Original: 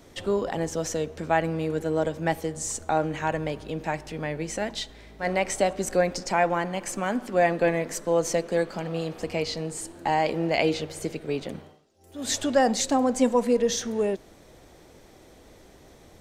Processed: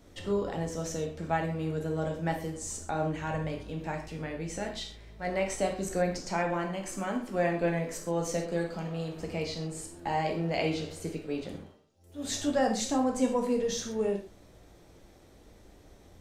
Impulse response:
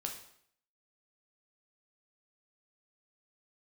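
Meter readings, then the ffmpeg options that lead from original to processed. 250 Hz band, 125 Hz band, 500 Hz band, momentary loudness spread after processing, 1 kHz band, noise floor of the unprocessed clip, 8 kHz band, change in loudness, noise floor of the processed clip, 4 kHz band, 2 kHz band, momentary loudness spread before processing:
−4.0 dB, −1.5 dB, −6.0 dB, 9 LU, −6.5 dB, −53 dBFS, −6.5 dB, −5.5 dB, −56 dBFS, −6.0 dB, −6.5 dB, 10 LU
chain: -filter_complex "[0:a]lowshelf=frequency=150:gain=8[link_01];[1:a]atrim=start_sample=2205,atrim=end_sample=6174[link_02];[link_01][link_02]afir=irnorm=-1:irlink=0,volume=-6dB"

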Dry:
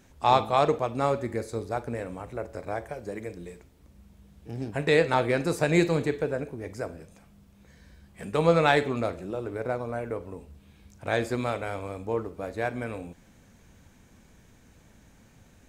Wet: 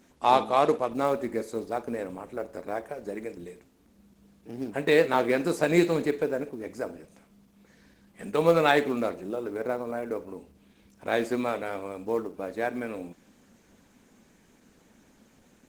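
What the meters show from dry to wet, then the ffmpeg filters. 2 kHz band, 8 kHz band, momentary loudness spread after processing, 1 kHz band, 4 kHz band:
−0.5 dB, −1.0 dB, 16 LU, 0.0 dB, −1.0 dB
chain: -af "lowshelf=frequency=160:width_type=q:width=1.5:gain=-10.5,acrusher=bits=7:mode=log:mix=0:aa=0.000001" -ar 48000 -c:a libopus -b:a 16k

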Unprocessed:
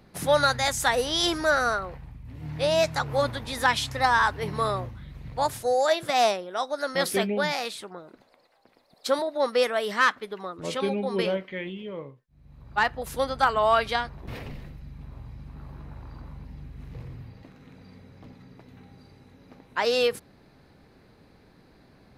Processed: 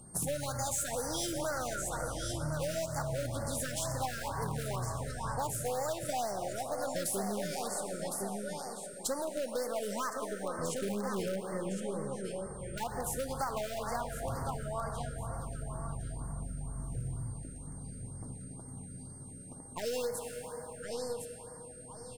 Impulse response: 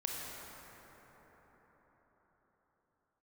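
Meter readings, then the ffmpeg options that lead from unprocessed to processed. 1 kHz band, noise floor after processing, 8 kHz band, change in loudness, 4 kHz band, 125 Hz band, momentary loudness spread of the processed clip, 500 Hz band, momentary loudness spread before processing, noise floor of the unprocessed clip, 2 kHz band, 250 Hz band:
−11.5 dB, −48 dBFS, +1.0 dB, −11.5 dB, −14.0 dB, −1.5 dB, 10 LU, −9.5 dB, 21 LU, −58 dBFS, −17.0 dB, −5.0 dB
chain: -filter_complex "[0:a]aeval=exprs='if(lt(val(0),0),0.708*val(0),val(0))':channel_layout=same,equalizer=frequency=125:width_type=o:width=1:gain=5,equalizer=frequency=500:width_type=o:width=1:gain=-3,equalizer=frequency=2000:width_type=o:width=1:gain=-12,equalizer=frequency=4000:width_type=o:width=1:gain=-11,equalizer=frequency=8000:width_type=o:width=1:gain=10,aecho=1:1:1060|2120|3180:0.282|0.0648|0.0149,asplit=2[link_01][link_02];[link_02]aeval=exprs='(mod(15*val(0)+1,2)-1)/15':channel_layout=same,volume=-9dB[link_03];[link_01][link_03]amix=inputs=2:normalize=0,aeval=exprs='val(0)+0.002*sin(2*PI*8700*n/s)':channel_layout=same,asplit=2[link_04][link_05];[link_05]lowshelf=frequency=380:gain=-11.5[link_06];[1:a]atrim=start_sample=2205[link_07];[link_06][link_07]afir=irnorm=-1:irlink=0,volume=-3dB[link_08];[link_04][link_08]amix=inputs=2:normalize=0,acompressor=threshold=-28dB:ratio=6,afftfilt=real='re*(1-between(b*sr/1024,890*pow(3100/890,0.5+0.5*sin(2*PI*2.1*pts/sr))/1.41,890*pow(3100/890,0.5+0.5*sin(2*PI*2.1*pts/sr))*1.41))':imag='im*(1-between(b*sr/1024,890*pow(3100/890,0.5+0.5*sin(2*PI*2.1*pts/sr))/1.41,890*pow(3100/890,0.5+0.5*sin(2*PI*2.1*pts/sr))*1.41))':win_size=1024:overlap=0.75,volume=-3.5dB"

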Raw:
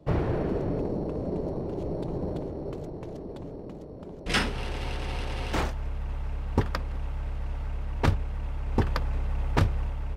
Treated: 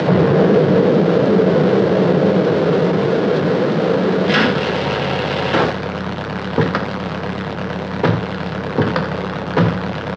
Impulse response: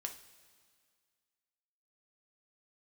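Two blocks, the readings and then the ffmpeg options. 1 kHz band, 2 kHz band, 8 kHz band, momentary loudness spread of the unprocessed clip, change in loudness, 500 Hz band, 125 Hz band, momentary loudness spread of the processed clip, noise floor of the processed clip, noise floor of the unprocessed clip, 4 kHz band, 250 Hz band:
+15.5 dB, +15.0 dB, can't be measured, 12 LU, +15.0 dB, +19.5 dB, +11.5 dB, 10 LU, −25 dBFS, −41 dBFS, +13.0 dB, +17.0 dB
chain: -filter_complex "[0:a]aeval=exprs='val(0)+0.5*0.0531*sgn(val(0))':channel_layout=same,acompressor=mode=upward:threshold=-29dB:ratio=2.5,flanger=delay=8.3:depth=5.9:regen=-50:speed=1.6:shape=triangular,afreqshift=16,highpass=frequency=130:width=0.5412,highpass=frequency=130:width=1.3066,equalizer=frequency=180:width_type=q:width=4:gain=7,equalizer=frequency=490:width_type=q:width=4:gain=8,equalizer=frequency=1500:width_type=q:width=4:gain=4,equalizer=frequency=2400:width_type=q:width=4:gain=-3,lowpass=frequency=4400:width=0.5412,lowpass=frequency=4400:width=1.3066,aecho=1:1:82:0.178,asplit=2[link_01][link_02];[1:a]atrim=start_sample=2205[link_03];[link_02][link_03]afir=irnorm=-1:irlink=0,volume=4dB[link_04];[link_01][link_04]amix=inputs=2:normalize=0,alimiter=level_in=10.5dB:limit=-1dB:release=50:level=0:latency=1,volume=-3dB"

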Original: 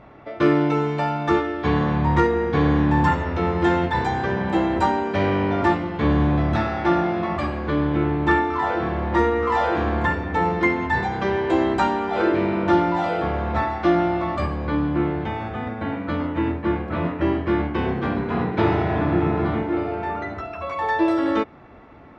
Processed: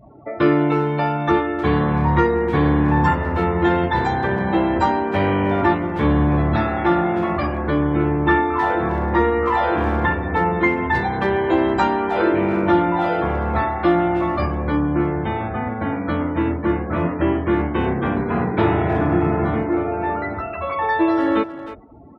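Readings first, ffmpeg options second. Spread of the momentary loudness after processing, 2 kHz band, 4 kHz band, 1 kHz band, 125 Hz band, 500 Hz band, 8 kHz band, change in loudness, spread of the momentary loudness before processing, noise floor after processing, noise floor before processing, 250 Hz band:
5 LU, +2.5 dB, +0.5 dB, +2.5 dB, +2.5 dB, +2.5 dB, can't be measured, +2.5 dB, 6 LU, −29 dBFS, −34 dBFS, +2.5 dB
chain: -filter_complex "[0:a]afftdn=noise_reduction=31:noise_floor=-40,asplit=2[link_01][link_02];[link_02]acompressor=threshold=-27dB:ratio=5,volume=-2dB[link_03];[link_01][link_03]amix=inputs=2:normalize=0,asplit=2[link_04][link_05];[link_05]adelay=310,highpass=300,lowpass=3400,asoftclip=type=hard:threshold=-14.5dB,volume=-12dB[link_06];[link_04][link_06]amix=inputs=2:normalize=0"

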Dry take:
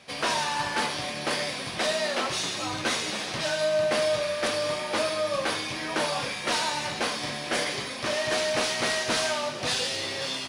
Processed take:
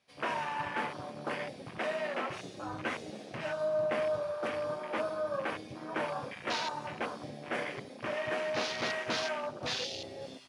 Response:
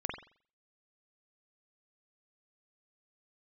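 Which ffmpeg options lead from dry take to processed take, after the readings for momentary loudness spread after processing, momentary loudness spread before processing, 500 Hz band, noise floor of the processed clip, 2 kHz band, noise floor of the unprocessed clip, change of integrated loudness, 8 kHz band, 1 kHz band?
8 LU, 4 LU, −6.0 dB, −48 dBFS, −8.5 dB, −35 dBFS, −8.5 dB, −17.5 dB, −6.5 dB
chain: -af "afwtdn=0.0316,volume=-6dB"

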